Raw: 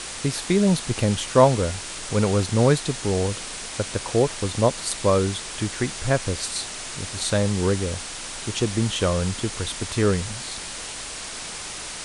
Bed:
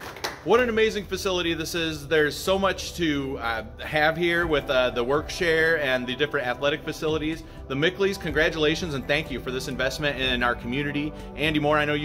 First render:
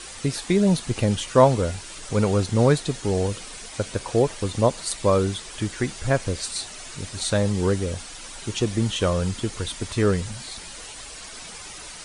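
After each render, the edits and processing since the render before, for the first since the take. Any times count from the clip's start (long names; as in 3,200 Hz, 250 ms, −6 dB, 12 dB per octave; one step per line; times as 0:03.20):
broadband denoise 9 dB, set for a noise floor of −35 dBFS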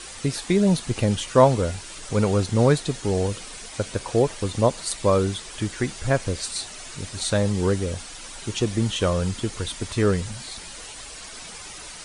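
no processing that can be heard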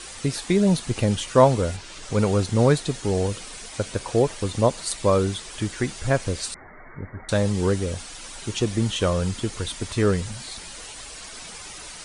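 0:01.76–0:02.17: low-pass filter 5,300 Hz → 9,500 Hz
0:06.54–0:07.29: Chebyshev low-pass filter 2,200 Hz, order 10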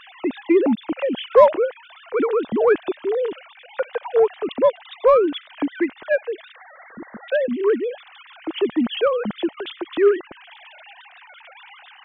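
three sine waves on the formant tracks
in parallel at −7 dB: soft clipping −15.5 dBFS, distortion −10 dB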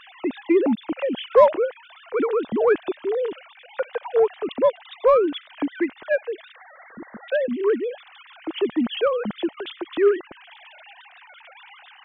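level −2 dB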